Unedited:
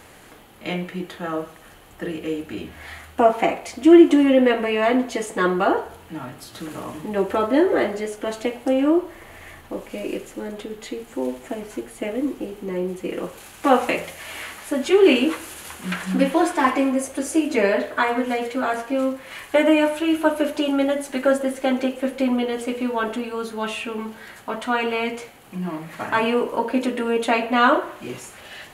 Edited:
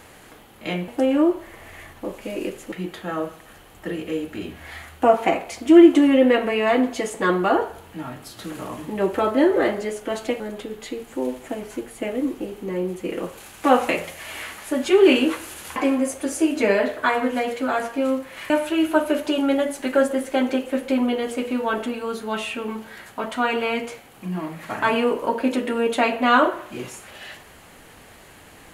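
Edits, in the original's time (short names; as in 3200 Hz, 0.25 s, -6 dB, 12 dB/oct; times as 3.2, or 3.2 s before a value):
8.56–10.4 move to 0.88
15.76–16.7 cut
19.44–19.8 cut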